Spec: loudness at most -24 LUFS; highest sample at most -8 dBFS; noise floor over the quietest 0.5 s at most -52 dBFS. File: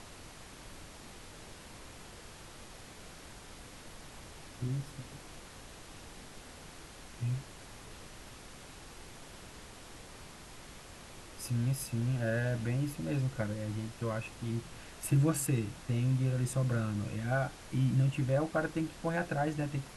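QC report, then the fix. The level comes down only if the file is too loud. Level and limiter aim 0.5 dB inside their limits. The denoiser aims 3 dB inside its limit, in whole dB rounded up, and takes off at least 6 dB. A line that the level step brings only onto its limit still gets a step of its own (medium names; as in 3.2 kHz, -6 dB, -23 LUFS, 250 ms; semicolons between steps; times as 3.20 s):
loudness -34.0 LUFS: pass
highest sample -17.5 dBFS: pass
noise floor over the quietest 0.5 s -50 dBFS: fail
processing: noise reduction 6 dB, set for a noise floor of -50 dBFS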